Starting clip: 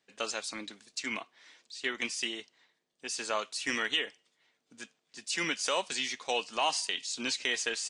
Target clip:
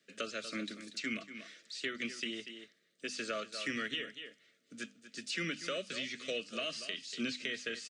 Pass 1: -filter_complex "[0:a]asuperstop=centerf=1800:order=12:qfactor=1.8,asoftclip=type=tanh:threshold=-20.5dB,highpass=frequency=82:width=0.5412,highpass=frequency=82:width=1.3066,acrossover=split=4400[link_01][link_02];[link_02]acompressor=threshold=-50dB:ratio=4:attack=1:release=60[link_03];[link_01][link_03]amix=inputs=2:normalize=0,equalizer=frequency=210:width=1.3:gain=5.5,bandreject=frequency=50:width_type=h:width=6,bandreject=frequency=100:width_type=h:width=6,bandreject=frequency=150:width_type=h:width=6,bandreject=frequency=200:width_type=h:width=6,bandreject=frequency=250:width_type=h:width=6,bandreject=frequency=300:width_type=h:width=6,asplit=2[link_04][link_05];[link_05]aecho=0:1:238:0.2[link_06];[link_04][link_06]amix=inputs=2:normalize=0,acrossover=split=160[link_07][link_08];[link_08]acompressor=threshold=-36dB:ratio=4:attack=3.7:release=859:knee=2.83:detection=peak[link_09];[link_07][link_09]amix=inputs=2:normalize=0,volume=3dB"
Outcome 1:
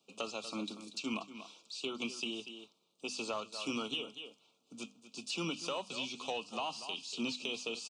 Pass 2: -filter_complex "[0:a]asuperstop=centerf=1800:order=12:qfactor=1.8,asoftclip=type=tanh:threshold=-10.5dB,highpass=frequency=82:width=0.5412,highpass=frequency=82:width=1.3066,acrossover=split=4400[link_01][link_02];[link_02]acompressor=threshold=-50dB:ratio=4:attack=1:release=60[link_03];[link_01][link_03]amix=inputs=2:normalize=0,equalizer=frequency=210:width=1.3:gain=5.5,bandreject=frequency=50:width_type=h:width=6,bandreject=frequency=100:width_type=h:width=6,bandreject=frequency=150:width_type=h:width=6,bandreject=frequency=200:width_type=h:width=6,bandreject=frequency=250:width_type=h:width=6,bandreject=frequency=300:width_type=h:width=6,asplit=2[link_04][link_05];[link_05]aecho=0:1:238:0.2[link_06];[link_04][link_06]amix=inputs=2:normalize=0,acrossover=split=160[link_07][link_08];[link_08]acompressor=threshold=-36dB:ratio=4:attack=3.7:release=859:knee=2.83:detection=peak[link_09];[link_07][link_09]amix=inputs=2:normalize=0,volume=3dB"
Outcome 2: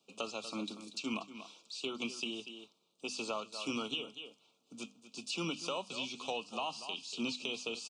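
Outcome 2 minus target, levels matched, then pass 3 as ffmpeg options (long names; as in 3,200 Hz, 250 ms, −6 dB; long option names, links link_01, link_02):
1,000 Hz band +6.0 dB
-filter_complex "[0:a]asuperstop=centerf=880:order=12:qfactor=1.8,asoftclip=type=tanh:threshold=-10.5dB,highpass=frequency=82:width=0.5412,highpass=frequency=82:width=1.3066,acrossover=split=4400[link_01][link_02];[link_02]acompressor=threshold=-50dB:ratio=4:attack=1:release=60[link_03];[link_01][link_03]amix=inputs=2:normalize=0,equalizer=frequency=210:width=1.3:gain=5.5,bandreject=frequency=50:width_type=h:width=6,bandreject=frequency=100:width_type=h:width=6,bandreject=frequency=150:width_type=h:width=6,bandreject=frequency=200:width_type=h:width=6,bandreject=frequency=250:width_type=h:width=6,bandreject=frequency=300:width_type=h:width=6,asplit=2[link_04][link_05];[link_05]aecho=0:1:238:0.2[link_06];[link_04][link_06]amix=inputs=2:normalize=0,acrossover=split=160[link_07][link_08];[link_08]acompressor=threshold=-36dB:ratio=4:attack=3.7:release=859:knee=2.83:detection=peak[link_09];[link_07][link_09]amix=inputs=2:normalize=0,volume=3dB"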